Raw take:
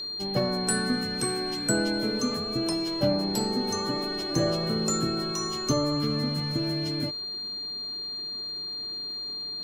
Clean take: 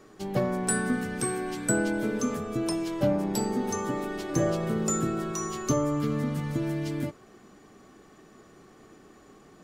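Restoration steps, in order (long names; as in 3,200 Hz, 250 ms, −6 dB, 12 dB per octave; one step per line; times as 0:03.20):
click removal
notch filter 4,200 Hz, Q 30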